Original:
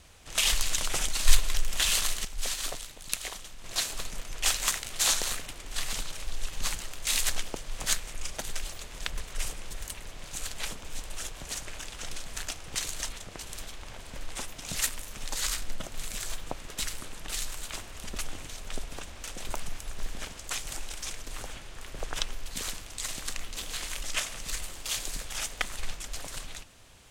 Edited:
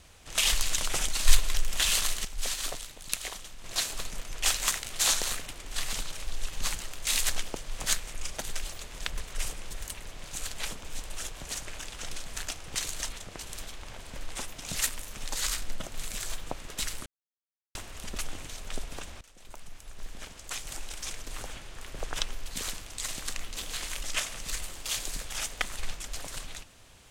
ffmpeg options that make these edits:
-filter_complex "[0:a]asplit=4[a][b][c][d];[a]atrim=end=17.06,asetpts=PTS-STARTPTS,afade=t=out:st=17.056:d=0.004:c=hsin[e];[b]atrim=start=17.06:end=17.75,asetpts=PTS-STARTPTS,volume=0[f];[c]atrim=start=17.75:end=19.21,asetpts=PTS-STARTPTS,afade=t=in:d=0.004:c=hsin,afade=t=out:st=1.456:d=0.004:c=hsin:silence=0.0944061[g];[d]atrim=start=19.21,asetpts=PTS-STARTPTS,afade=t=in:d=1.94:silence=0.0944061[h];[e][f][g][h]concat=n=4:v=0:a=1"

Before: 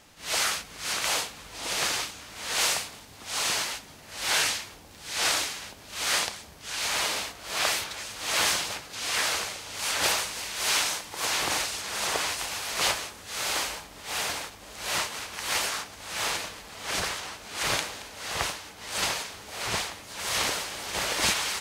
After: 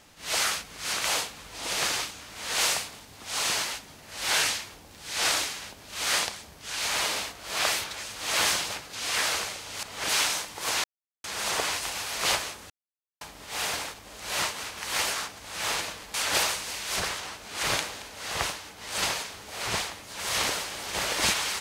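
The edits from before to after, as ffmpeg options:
-filter_complex "[0:a]asplit=9[a][b][c][d][e][f][g][h][i];[a]atrim=end=9.832[j];[b]atrim=start=16.698:end=16.962[k];[c]atrim=start=10.648:end=11.4,asetpts=PTS-STARTPTS,afade=t=out:st=0.748:d=0.004:c=hsin[l];[d]atrim=start=11.4:end=11.8,asetpts=PTS-STARTPTS,volume=0[m];[e]atrim=start=11.8:end=13.26,asetpts=PTS-STARTPTS,afade=t=in:d=0.004:c=hsin,afade=t=out:st=1.456:d=0.004:c=hsin[n];[f]atrim=start=13.26:end=13.77,asetpts=PTS-STARTPTS,volume=0[o];[g]atrim=start=13.77:end=16.702,asetpts=PTS-STARTPTS,afade=t=in:d=0.004:c=hsin[p];[h]atrim=start=9.828:end=10.652[q];[i]atrim=start=16.958[r];[j][k]acrossfade=d=0.004:c1=hsin:c2=hsin[s];[l][m][n][o][p]concat=n=5:v=0:a=1[t];[s][t]acrossfade=d=0.004:c1=hsin:c2=hsin[u];[u][q]acrossfade=d=0.004:c1=hsin:c2=hsin[v];[v][r]acrossfade=d=0.004:c1=hsin:c2=hsin"

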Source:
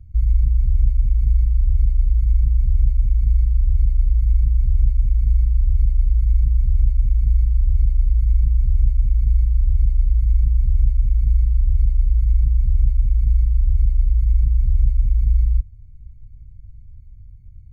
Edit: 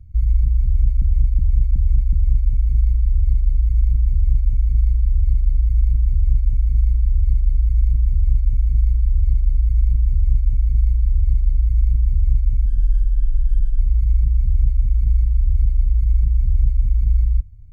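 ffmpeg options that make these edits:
-filter_complex "[0:a]asplit=7[a][b][c][d][e][f][g];[a]atrim=end=1.022[h];[b]atrim=start=0.648:end=1.022[i];[c]atrim=start=0.648:end=1.022[j];[d]atrim=start=0.648:end=1.022[k];[e]atrim=start=0.648:end=11.184[l];[f]atrim=start=11.18:end=12,asetpts=PTS-STARTPTS,asetrate=31752,aresample=44100[m];[g]atrim=start=11.996[n];[h][i]acrossfade=d=0.004:c1=hsin:c2=hsin[o];[o][j]acrossfade=d=0.004:c1=hsin:c2=hsin[p];[p][k]acrossfade=d=0.004:c1=hsin:c2=hsin[q];[q][l]acrossfade=d=0.004:c1=hsin:c2=hsin[r];[r][m]acrossfade=d=0.004:c1=hsin:c2=hsin[s];[s][n]acrossfade=d=0.004:c1=hsin:c2=hsin"

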